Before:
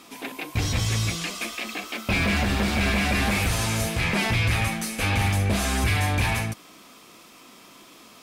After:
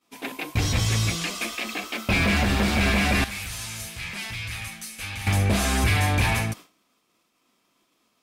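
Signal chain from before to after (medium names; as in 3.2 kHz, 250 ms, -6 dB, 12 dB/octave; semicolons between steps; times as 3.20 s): expander -35 dBFS; 3.24–5.27 s: amplifier tone stack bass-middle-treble 5-5-5; trim +1.5 dB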